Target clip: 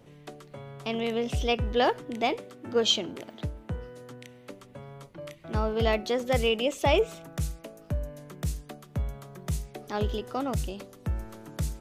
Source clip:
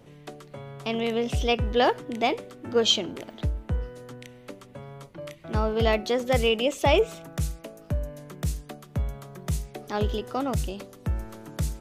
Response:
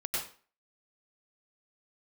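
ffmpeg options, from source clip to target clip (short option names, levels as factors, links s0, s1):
-filter_complex "[0:a]asettb=1/sr,asplit=3[s0][s1][s2];[s0]atrim=end=2.364[s3];[s1]atrim=start=2.36:end=4.51,asetpts=PTS-STARTPTS,afade=t=in:d=0.004:c=qsin,afade=t=out:st=2.146:d=0.004:c=qsin,highpass=89[s4];[s2]atrim=start=4.506[s5];[s3][s4]acrossfade=d=0.004:c1=hsin:c2=qsin[s6];[s6][s5]acrossfade=d=0.004:c1=qsin:c2=hsin,volume=0.75"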